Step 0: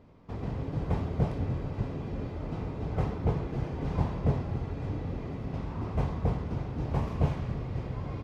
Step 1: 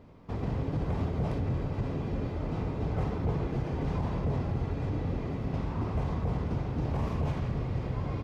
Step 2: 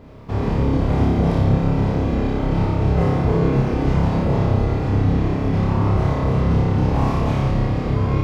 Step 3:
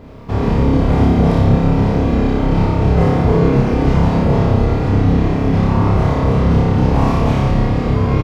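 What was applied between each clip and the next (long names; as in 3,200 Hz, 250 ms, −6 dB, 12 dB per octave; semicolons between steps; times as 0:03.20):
brickwall limiter −25 dBFS, peak gain reduction 11.5 dB; level +3 dB
flutter between parallel walls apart 5.1 metres, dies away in 0.92 s; level +9 dB
double-tracking delay 34 ms −12.5 dB; level +5 dB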